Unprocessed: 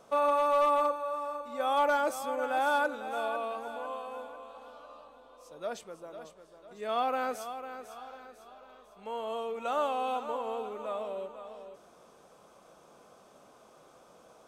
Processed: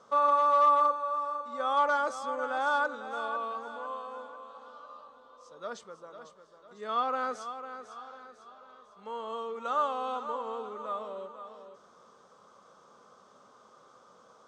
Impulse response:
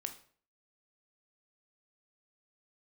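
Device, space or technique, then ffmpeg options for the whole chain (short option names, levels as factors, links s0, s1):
car door speaker: -af "highpass=100,equalizer=f=150:t=q:w=4:g=-5,equalizer=f=320:t=q:w=4:g=-8,equalizer=f=690:t=q:w=4:g=-8,equalizer=f=1200:t=q:w=4:g=7,equalizer=f=2500:t=q:w=4:g=-10,lowpass=f=7100:w=0.5412,lowpass=f=7100:w=1.3066"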